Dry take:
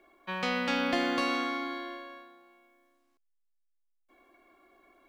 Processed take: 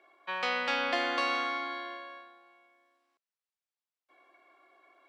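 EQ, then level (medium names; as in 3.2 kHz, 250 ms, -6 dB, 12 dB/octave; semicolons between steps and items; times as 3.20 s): high-pass 550 Hz 12 dB/octave; distance through air 62 m; band-stop 6.5 kHz, Q 16; +2.0 dB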